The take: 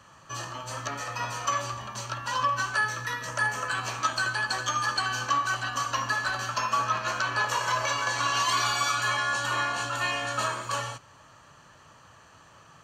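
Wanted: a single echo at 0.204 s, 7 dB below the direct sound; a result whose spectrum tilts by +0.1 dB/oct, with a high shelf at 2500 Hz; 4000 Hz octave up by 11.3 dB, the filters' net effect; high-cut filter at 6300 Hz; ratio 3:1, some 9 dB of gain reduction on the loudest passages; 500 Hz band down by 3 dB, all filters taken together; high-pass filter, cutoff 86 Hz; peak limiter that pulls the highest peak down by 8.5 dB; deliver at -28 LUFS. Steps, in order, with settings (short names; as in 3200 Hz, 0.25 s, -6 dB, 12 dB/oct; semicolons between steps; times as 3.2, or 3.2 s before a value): HPF 86 Hz; LPF 6300 Hz; bell 500 Hz -4.5 dB; high shelf 2500 Hz +8 dB; bell 4000 Hz +8 dB; compressor 3:1, threshold -28 dBFS; limiter -21 dBFS; echo 0.204 s -7 dB; gain +1 dB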